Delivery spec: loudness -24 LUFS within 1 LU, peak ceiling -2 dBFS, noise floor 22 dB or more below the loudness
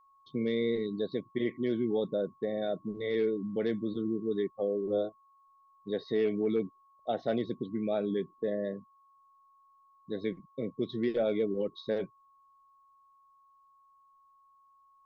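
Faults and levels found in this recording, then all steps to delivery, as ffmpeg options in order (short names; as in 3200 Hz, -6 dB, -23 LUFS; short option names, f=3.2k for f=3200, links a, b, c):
steady tone 1100 Hz; tone level -61 dBFS; loudness -33.0 LUFS; peak -19.0 dBFS; loudness target -24.0 LUFS
-> -af "bandreject=f=1.1k:w=30"
-af "volume=9dB"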